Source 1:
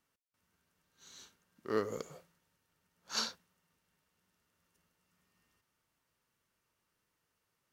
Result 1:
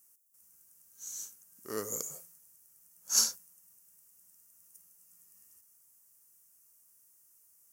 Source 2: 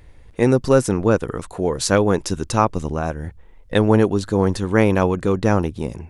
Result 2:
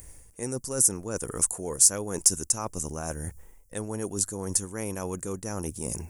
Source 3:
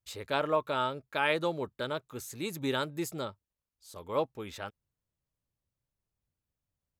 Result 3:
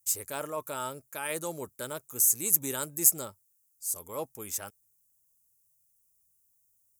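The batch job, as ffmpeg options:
-af "areverse,acompressor=threshold=-27dB:ratio=6,areverse,aexciter=amount=10.6:drive=9:freq=5.9k,volume=-3.5dB"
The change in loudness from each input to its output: +5.5, -7.0, +4.5 LU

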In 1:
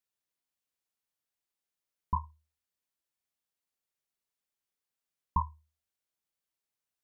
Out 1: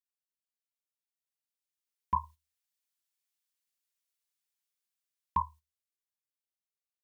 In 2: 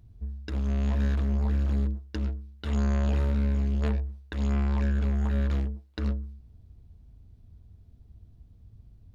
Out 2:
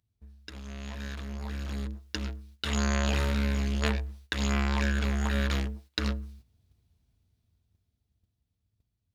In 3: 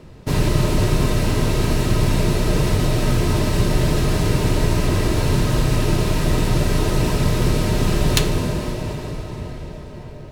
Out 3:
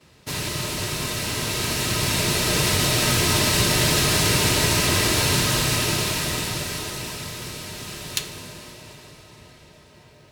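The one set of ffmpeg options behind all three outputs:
-af "highpass=67,agate=range=-12dB:threshold=-49dB:ratio=16:detection=peak,tiltshelf=f=1.2k:g=-8,dynaudnorm=f=130:g=31:m=13dB,volume=-5dB"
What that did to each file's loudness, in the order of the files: +1.0, -2.5, -1.0 LU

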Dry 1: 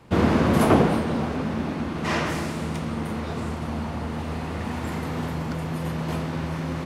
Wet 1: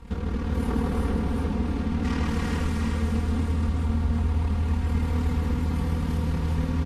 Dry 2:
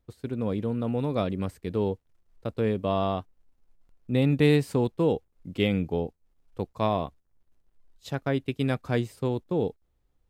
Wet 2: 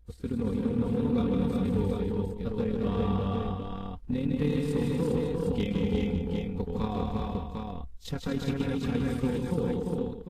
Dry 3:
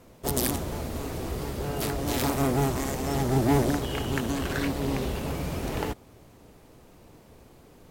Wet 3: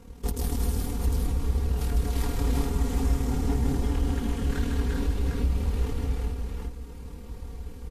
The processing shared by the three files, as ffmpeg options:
-af "equalizer=f=61:t=o:w=0.82:g=15,tremolo=f=38:d=0.75,lowshelf=f=170:g=8.5,acompressor=threshold=-27dB:ratio=12,aecho=1:1:4.3:0.6,asoftclip=type=hard:threshold=-23dB,aecho=1:1:154|237|349|402|549|753:0.631|0.422|0.668|0.596|0.282|0.596,aresample=32000,aresample=44100,asuperstop=centerf=650:order=8:qfactor=6.4,volume=1.5dB" -ar 48000 -c:a libvorbis -b:a 32k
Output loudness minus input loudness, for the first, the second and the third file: -1.0, -2.0, -0.5 LU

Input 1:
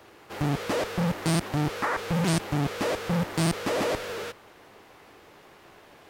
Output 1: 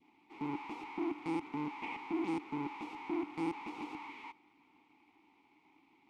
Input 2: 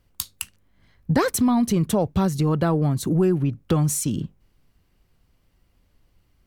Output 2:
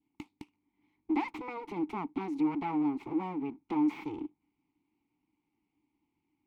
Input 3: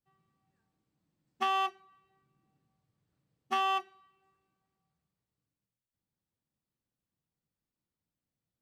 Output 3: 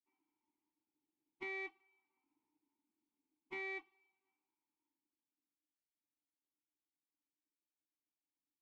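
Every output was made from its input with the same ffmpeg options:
-filter_complex "[0:a]aeval=exprs='abs(val(0))':c=same,adynamicequalizer=threshold=0.00631:dfrequency=1400:dqfactor=1.5:tfrequency=1400:tqfactor=1.5:attack=5:release=100:ratio=0.375:range=3:mode=boostabove:tftype=bell,asplit=3[a][b][c];[a]bandpass=f=300:t=q:w=8,volume=0dB[d];[b]bandpass=f=870:t=q:w=8,volume=-6dB[e];[c]bandpass=f=2.24k:t=q:w=8,volume=-9dB[f];[d][e][f]amix=inputs=3:normalize=0,volume=2.5dB"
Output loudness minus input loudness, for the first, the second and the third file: -12.5, -11.5, -13.0 LU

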